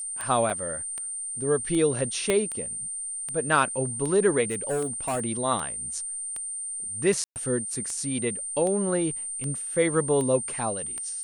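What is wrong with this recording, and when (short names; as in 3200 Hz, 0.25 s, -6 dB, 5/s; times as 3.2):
tick 78 rpm -20 dBFS
tone 8900 Hz -31 dBFS
0.5 gap 2.8 ms
2.3 pop -10 dBFS
4.45–5.22 clipped -24 dBFS
7.24–7.36 gap 0.119 s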